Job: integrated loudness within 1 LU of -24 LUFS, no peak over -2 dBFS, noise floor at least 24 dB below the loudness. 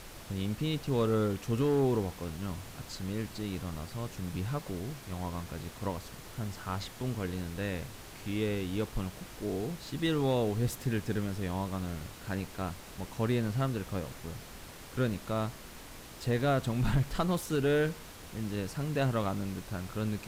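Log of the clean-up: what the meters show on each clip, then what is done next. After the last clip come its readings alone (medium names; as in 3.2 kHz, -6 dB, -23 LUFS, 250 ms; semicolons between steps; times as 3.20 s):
clipped samples 0.3%; clipping level -21.0 dBFS; noise floor -48 dBFS; noise floor target -58 dBFS; loudness -34.0 LUFS; peak level -21.0 dBFS; loudness target -24.0 LUFS
-> clip repair -21 dBFS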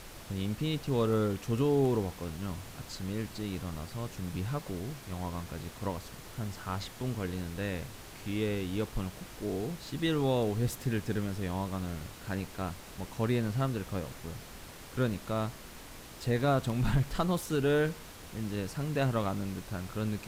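clipped samples 0.0%; noise floor -48 dBFS; noise floor target -58 dBFS
-> noise print and reduce 10 dB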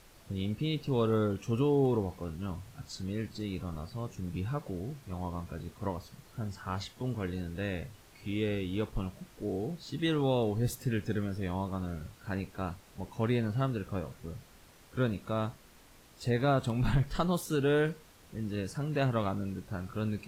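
noise floor -58 dBFS; loudness -33.5 LUFS; peak level -15.5 dBFS; loudness target -24.0 LUFS
-> trim +9.5 dB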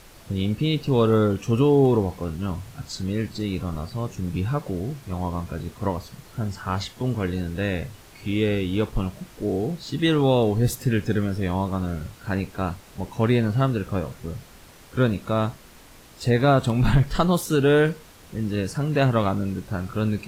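loudness -24.0 LUFS; peak level -6.0 dBFS; noise floor -48 dBFS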